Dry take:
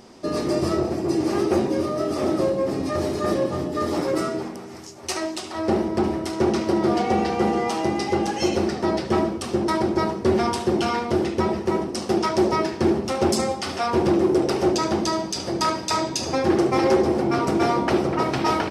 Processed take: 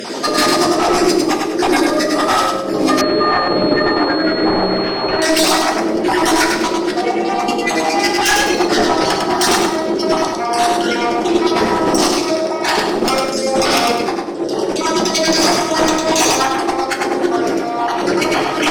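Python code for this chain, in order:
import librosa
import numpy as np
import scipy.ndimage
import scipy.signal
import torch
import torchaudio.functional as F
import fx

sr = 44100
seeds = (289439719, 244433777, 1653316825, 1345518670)

y = fx.spec_dropout(x, sr, seeds[0], share_pct=32)
y = scipy.signal.sosfilt(scipy.signal.butter(2, 280.0, 'highpass', fs=sr, output='sos'), y)
y = fx.hum_notches(y, sr, base_hz=60, count=6)
y = fx.over_compress(y, sr, threshold_db=-35.0, ratio=-1.0)
y = fx.fold_sine(y, sr, drive_db=14, ceiling_db=-10.0)
y = fx.echo_feedback(y, sr, ms=102, feedback_pct=34, wet_db=-3.5)
y = fx.room_shoebox(y, sr, seeds[1], volume_m3=68.0, walls='mixed', distance_m=0.45)
y = fx.pwm(y, sr, carrier_hz=4300.0, at=(3.01, 5.22))
y = F.gain(torch.from_numpy(y), -1.0).numpy()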